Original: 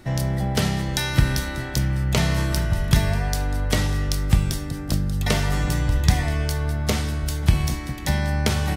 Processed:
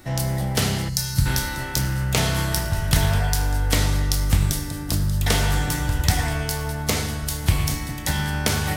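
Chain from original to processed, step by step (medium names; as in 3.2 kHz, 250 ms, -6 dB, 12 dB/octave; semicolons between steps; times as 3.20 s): peaking EQ 97 Hz -4 dB 2.8 oct; reverberation RT60 1.3 s, pre-delay 5 ms, DRR 3.5 dB; time-frequency box 0.89–1.26 s, 200–4000 Hz -13 dB; treble shelf 8.4 kHz +11.5 dB; loudspeaker Doppler distortion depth 0.3 ms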